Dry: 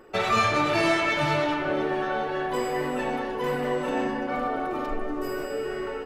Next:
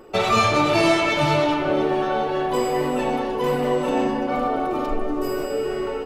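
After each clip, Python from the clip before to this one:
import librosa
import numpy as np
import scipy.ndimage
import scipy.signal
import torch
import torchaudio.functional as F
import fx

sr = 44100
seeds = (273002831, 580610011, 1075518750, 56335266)

y = fx.peak_eq(x, sr, hz=1700.0, db=-8.0, octaves=0.65)
y = F.gain(torch.from_numpy(y), 6.0).numpy()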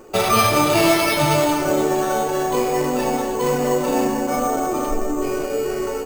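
y = np.repeat(x[::6], 6)[:len(x)]
y = F.gain(torch.from_numpy(y), 2.0).numpy()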